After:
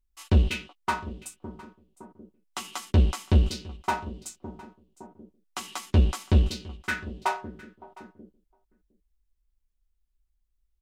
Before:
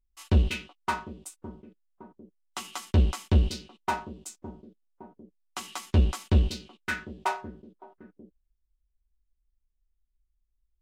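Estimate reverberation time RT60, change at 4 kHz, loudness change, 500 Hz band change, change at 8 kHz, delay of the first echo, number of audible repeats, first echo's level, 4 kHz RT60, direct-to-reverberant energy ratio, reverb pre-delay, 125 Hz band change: none, +1.5 dB, +1.5 dB, +1.5 dB, +1.5 dB, 0.709 s, 1, -21.5 dB, none, none, none, +1.5 dB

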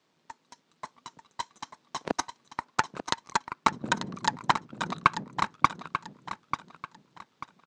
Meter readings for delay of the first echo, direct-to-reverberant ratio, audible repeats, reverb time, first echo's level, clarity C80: 0.89 s, none, 3, none, -9.5 dB, none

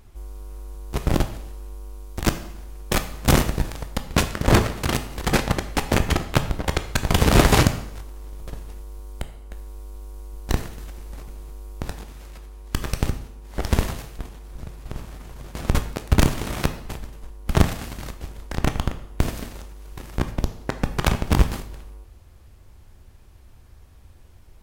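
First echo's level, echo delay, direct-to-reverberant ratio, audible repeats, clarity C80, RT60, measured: none, none, 8.0 dB, none, 14.5 dB, 0.75 s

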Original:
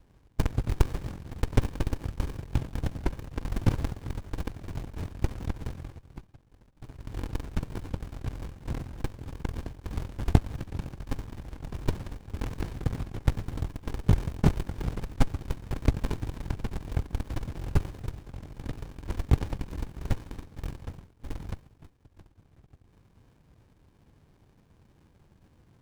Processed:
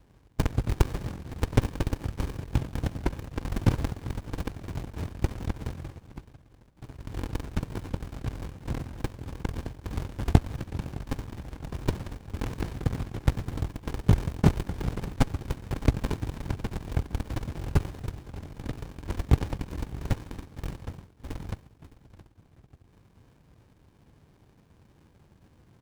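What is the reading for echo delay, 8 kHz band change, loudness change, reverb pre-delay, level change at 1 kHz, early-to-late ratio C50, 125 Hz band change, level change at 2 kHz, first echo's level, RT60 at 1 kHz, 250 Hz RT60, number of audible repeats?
0.612 s, +2.5 dB, +1.5 dB, none, +2.5 dB, none, +1.5 dB, +2.5 dB, -19.5 dB, none, none, 1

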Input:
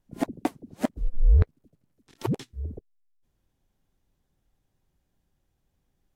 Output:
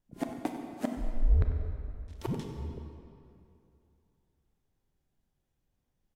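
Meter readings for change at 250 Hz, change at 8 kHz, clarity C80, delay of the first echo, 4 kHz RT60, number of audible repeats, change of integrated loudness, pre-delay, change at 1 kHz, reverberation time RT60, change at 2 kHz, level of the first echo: -5.0 dB, n/a, 5.0 dB, 95 ms, 1.8 s, 1, -6.0 dB, 26 ms, -5.0 dB, 2.7 s, -5.5 dB, -13.5 dB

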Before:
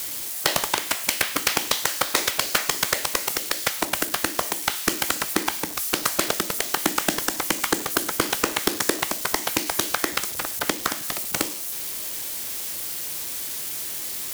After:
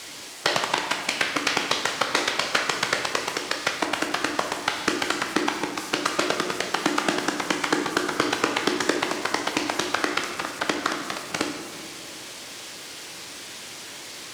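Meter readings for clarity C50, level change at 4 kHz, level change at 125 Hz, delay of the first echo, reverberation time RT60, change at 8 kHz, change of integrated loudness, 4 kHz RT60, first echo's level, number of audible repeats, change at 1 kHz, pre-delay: 6.0 dB, -0.5 dB, -1.0 dB, none, 2.0 s, -7.0 dB, -1.0 dB, 1.3 s, none, none, +2.0 dB, 6 ms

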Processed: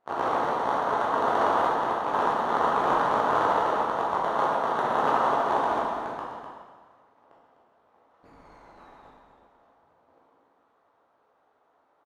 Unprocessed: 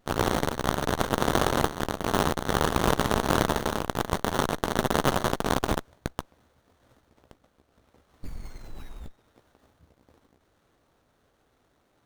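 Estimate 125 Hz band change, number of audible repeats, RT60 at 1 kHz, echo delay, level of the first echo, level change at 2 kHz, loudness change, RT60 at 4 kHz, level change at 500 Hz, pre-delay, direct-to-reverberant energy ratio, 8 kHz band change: -14.0 dB, 1, 1.5 s, 0.252 s, -8.5 dB, -1.0 dB, +1.5 dB, 1.4 s, +1.0 dB, 7 ms, -6.0 dB, under -15 dB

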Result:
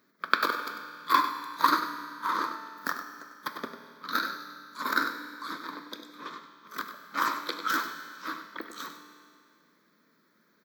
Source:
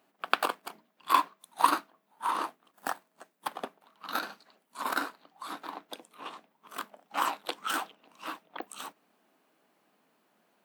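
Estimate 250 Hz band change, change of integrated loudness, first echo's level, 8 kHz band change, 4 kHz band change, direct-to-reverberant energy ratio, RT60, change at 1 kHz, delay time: +4.5 dB, +2.0 dB, -10.5 dB, -2.0 dB, +2.5 dB, 5.0 dB, 2.2 s, +1.5 dB, 98 ms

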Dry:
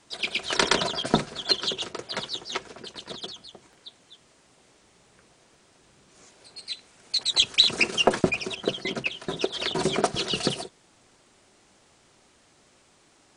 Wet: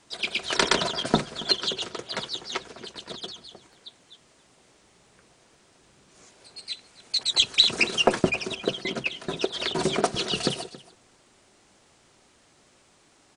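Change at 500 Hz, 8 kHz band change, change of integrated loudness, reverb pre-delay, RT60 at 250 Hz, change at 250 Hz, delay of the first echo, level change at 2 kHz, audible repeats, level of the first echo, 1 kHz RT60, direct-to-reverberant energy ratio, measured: 0.0 dB, 0.0 dB, 0.0 dB, none, none, 0.0 dB, 0.276 s, 0.0 dB, 1, -19.0 dB, none, none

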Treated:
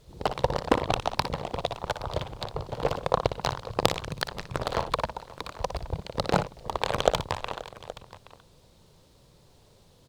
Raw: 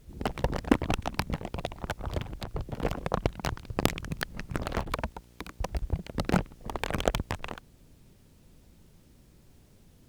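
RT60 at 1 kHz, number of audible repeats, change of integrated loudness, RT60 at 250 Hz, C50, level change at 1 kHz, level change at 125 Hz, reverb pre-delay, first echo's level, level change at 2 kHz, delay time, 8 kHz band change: none, 3, +3.0 dB, none, none, +6.5 dB, -0.5 dB, none, -10.0 dB, +1.5 dB, 59 ms, +2.0 dB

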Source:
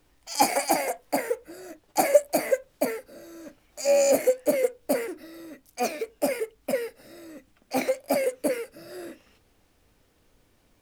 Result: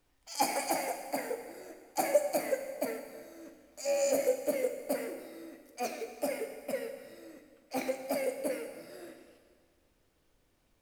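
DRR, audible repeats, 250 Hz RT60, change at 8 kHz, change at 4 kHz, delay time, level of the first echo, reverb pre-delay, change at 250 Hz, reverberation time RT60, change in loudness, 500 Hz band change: 6.5 dB, none, 1.9 s, -7.5 dB, -7.5 dB, none, none, 7 ms, -8.0 dB, 1.9 s, -8.0 dB, -8.0 dB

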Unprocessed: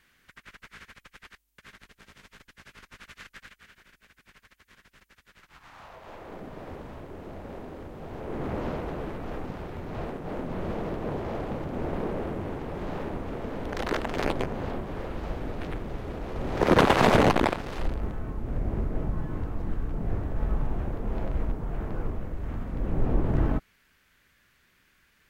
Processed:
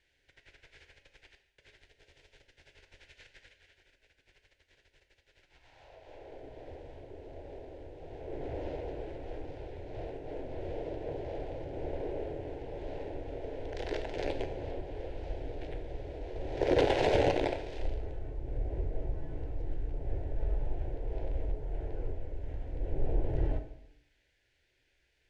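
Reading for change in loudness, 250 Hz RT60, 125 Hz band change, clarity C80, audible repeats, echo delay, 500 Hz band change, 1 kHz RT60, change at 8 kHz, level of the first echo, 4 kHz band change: -7.0 dB, 0.90 s, -7.5 dB, 12.0 dB, none, none, -4.0 dB, 0.85 s, under -10 dB, none, -7.5 dB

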